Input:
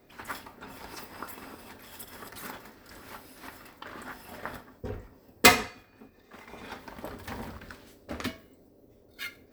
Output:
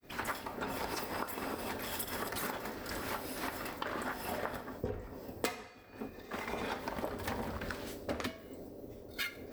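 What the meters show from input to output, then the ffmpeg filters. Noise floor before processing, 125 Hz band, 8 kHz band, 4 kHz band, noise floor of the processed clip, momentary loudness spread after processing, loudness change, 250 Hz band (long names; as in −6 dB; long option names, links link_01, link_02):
−59 dBFS, −2.0 dB, −9.5 dB, −10.0 dB, −52 dBFS, 9 LU, −10.0 dB, −2.5 dB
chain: -af "adynamicequalizer=threshold=0.00251:dfrequency=550:dqfactor=0.94:tfrequency=550:tqfactor=0.94:attack=5:release=100:ratio=0.375:range=2.5:mode=boostabove:tftype=bell,agate=range=-33dB:threshold=-56dB:ratio=3:detection=peak,acompressor=threshold=-43dB:ratio=16,volume=9dB"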